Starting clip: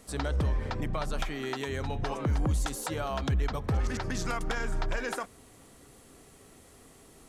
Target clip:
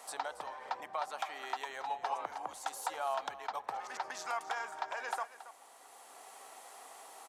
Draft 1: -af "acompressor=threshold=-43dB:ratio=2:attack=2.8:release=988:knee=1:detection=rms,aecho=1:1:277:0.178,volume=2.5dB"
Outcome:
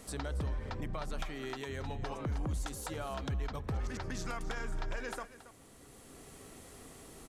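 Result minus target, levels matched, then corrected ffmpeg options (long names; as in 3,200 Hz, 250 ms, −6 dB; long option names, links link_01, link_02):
1,000 Hz band −8.0 dB
-af "acompressor=threshold=-43dB:ratio=2:attack=2.8:release=988:knee=1:detection=rms,highpass=frequency=810:width_type=q:width=3.7,aecho=1:1:277:0.178,volume=2.5dB"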